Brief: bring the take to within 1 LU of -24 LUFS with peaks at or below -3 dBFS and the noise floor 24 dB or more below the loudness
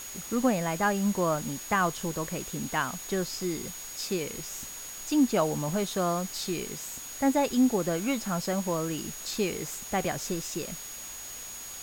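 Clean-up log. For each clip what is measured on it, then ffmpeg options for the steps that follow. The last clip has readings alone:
steady tone 6700 Hz; tone level -41 dBFS; noise floor -41 dBFS; noise floor target -54 dBFS; loudness -30.0 LUFS; peak -12.5 dBFS; loudness target -24.0 LUFS
-> -af "bandreject=f=6.7k:w=30"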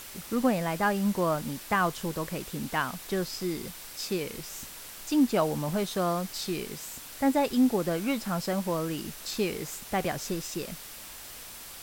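steady tone none; noise floor -44 dBFS; noise floor target -54 dBFS
-> -af "afftdn=nr=10:nf=-44"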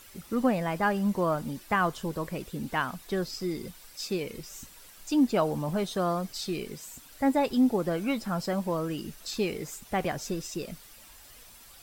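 noise floor -52 dBFS; noise floor target -54 dBFS
-> -af "afftdn=nr=6:nf=-52"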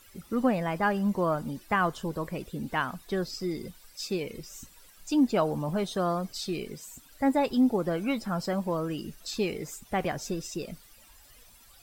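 noise floor -56 dBFS; loudness -30.0 LUFS; peak -13.0 dBFS; loudness target -24.0 LUFS
-> -af "volume=6dB"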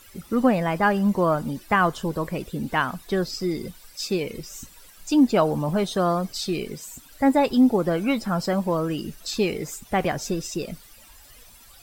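loudness -24.0 LUFS; peak -7.0 dBFS; noise floor -50 dBFS

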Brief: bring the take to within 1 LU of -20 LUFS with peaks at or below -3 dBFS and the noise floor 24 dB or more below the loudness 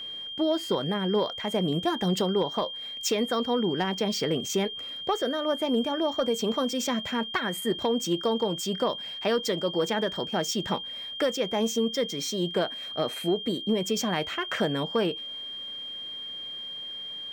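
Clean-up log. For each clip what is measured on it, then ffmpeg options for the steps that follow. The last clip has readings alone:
steady tone 3200 Hz; tone level -35 dBFS; loudness -28.0 LUFS; peak -14.0 dBFS; loudness target -20.0 LUFS
-> -af "bandreject=f=3.2k:w=30"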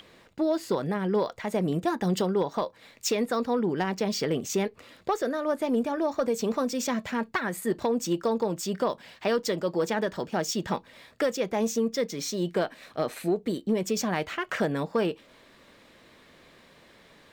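steady tone none; loudness -28.5 LUFS; peak -15.0 dBFS; loudness target -20.0 LUFS
-> -af "volume=8.5dB"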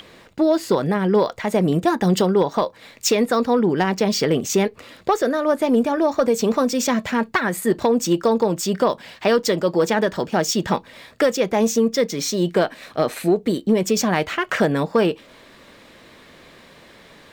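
loudness -20.0 LUFS; peak -6.5 dBFS; noise floor -48 dBFS

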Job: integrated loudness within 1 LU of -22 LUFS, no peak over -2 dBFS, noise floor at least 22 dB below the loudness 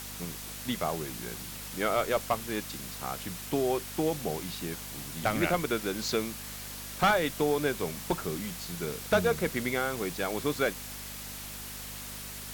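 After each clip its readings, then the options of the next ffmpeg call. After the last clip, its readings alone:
hum 50 Hz; harmonics up to 250 Hz; hum level -45 dBFS; noise floor -41 dBFS; noise floor target -54 dBFS; loudness -31.5 LUFS; peak -13.0 dBFS; loudness target -22.0 LUFS
-> -af "bandreject=f=50:t=h:w=4,bandreject=f=100:t=h:w=4,bandreject=f=150:t=h:w=4,bandreject=f=200:t=h:w=4,bandreject=f=250:t=h:w=4"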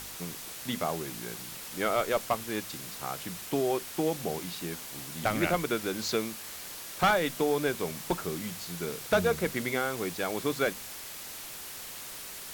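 hum none; noise floor -42 dBFS; noise floor target -54 dBFS
-> -af "afftdn=nr=12:nf=-42"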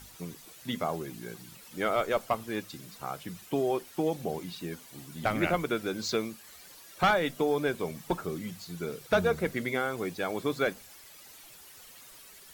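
noise floor -52 dBFS; noise floor target -54 dBFS
-> -af "afftdn=nr=6:nf=-52"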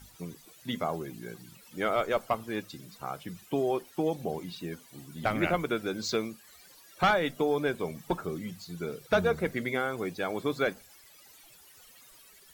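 noise floor -56 dBFS; loudness -31.5 LUFS; peak -13.5 dBFS; loudness target -22.0 LUFS
-> -af "volume=9.5dB"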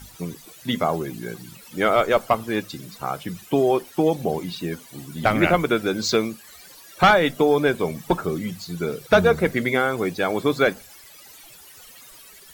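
loudness -22.0 LUFS; peak -4.0 dBFS; noise floor -47 dBFS

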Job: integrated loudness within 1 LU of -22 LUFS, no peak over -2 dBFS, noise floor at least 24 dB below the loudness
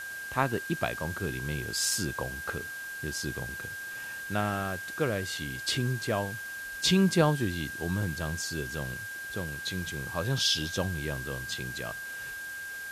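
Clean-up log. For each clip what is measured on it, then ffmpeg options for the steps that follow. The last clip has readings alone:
steady tone 1600 Hz; tone level -37 dBFS; noise floor -40 dBFS; noise floor target -55 dBFS; loudness -31.0 LUFS; peak -10.5 dBFS; loudness target -22.0 LUFS
-> -af "bandreject=f=1.6k:w=30"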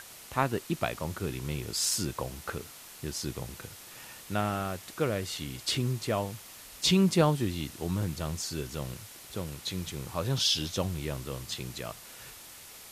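steady tone none; noise floor -49 dBFS; noise floor target -56 dBFS
-> -af "afftdn=nr=7:nf=-49"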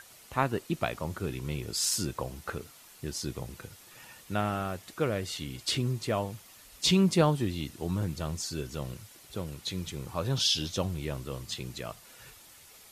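noise floor -54 dBFS; noise floor target -56 dBFS
-> -af "afftdn=nr=6:nf=-54"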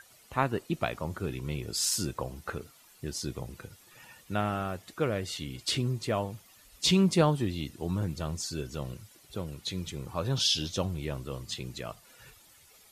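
noise floor -58 dBFS; loudness -31.5 LUFS; peak -10.5 dBFS; loudness target -22.0 LUFS
-> -af "volume=9.5dB,alimiter=limit=-2dB:level=0:latency=1"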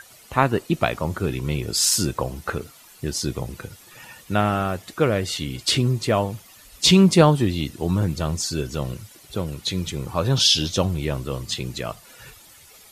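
loudness -22.0 LUFS; peak -2.0 dBFS; noise floor -49 dBFS

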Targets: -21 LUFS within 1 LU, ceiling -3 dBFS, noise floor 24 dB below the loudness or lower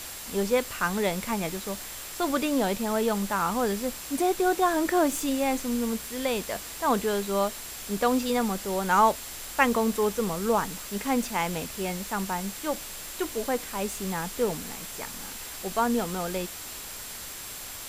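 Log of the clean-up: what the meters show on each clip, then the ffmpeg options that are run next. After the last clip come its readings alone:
steady tone 7500 Hz; tone level -47 dBFS; noise floor -40 dBFS; noise floor target -52 dBFS; loudness -28.0 LUFS; peak -6.5 dBFS; loudness target -21.0 LUFS
-> -af "bandreject=f=7.5k:w=30"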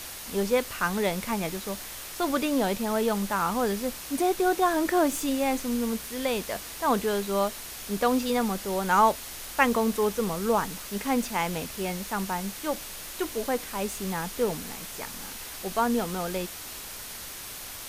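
steady tone none; noise floor -40 dBFS; noise floor target -52 dBFS
-> -af "afftdn=nr=12:nf=-40"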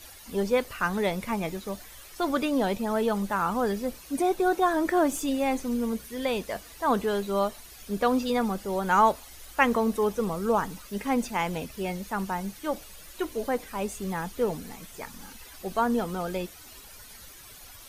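noise floor -48 dBFS; noise floor target -52 dBFS
-> -af "afftdn=nr=6:nf=-48"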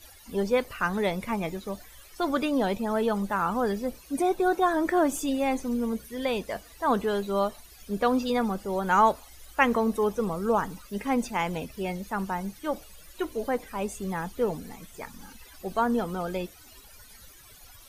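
noise floor -51 dBFS; noise floor target -52 dBFS
-> -af "afftdn=nr=6:nf=-51"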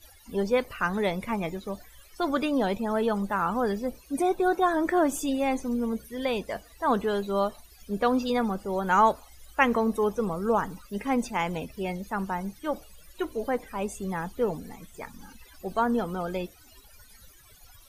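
noise floor -54 dBFS; loudness -28.0 LUFS; peak -6.5 dBFS; loudness target -21.0 LUFS
-> -af "volume=7dB,alimiter=limit=-3dB:level=0:latency=1"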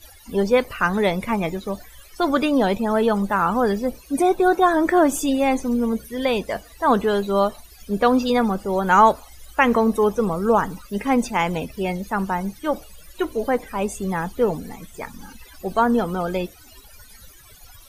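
loudness -21.0 LUFS; peak -3.0 dBFS; noise floor -47 dBFS

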